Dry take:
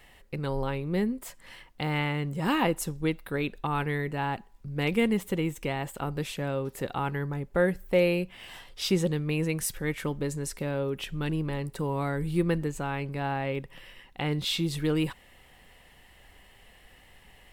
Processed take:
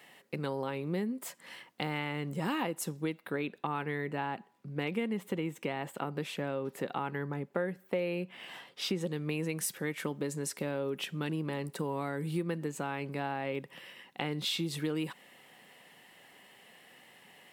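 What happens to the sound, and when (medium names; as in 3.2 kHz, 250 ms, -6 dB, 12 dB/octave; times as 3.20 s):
3.18–9.01 s: tone controls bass 0 dB, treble -7 dB
whole clip: high-pass 160 Hz 24 dB/octave; compression 5:1, threshold -30 dBFS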